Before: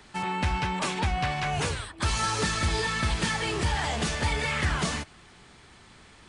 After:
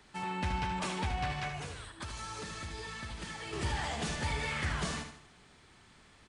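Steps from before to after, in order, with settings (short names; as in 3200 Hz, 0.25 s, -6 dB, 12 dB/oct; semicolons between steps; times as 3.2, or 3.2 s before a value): 1.48–3.53 compressor, threshold -32 dBFS, peak gain reduction 10 dB; feedback echo 76 ms, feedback 42%, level -7.5 dB; gain -8 dB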